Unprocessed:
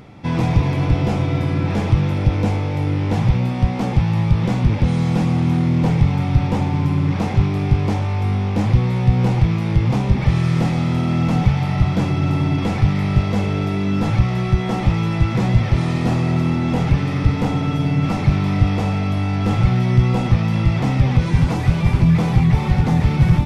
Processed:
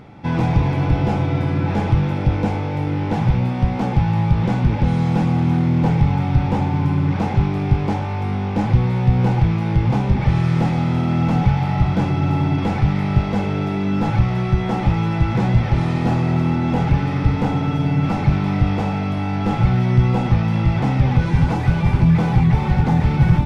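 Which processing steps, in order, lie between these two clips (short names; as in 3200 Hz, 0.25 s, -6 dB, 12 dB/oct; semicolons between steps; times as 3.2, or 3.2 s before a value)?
high shelf 4800 Hz -8.5 dB; notches 50/100 Hz; small resonant body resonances 840/1500 Hz, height 10 dB, ringing for 85 ms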